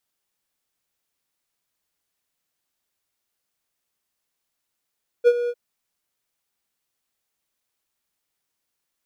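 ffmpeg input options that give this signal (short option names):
-f lavfi -i "aevalsrc='0.447*(1-4*abs(mod(481*t+0.25,1)-0.5))':d=0.301:s=44100,afade=t=in:d=0.035,afade=t=out:st=0.035:d=0.05:silence=0.237,afade=t=out:st=0.25:d=0.051"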